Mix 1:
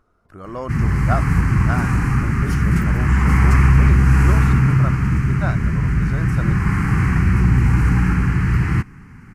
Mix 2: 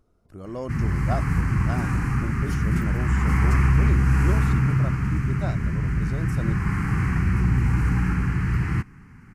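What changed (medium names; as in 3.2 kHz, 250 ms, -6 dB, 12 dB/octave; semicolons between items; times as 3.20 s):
speech: add peaking EQ 1.4 kHz -12.5 dB 1.6 oct; background -6.0 dB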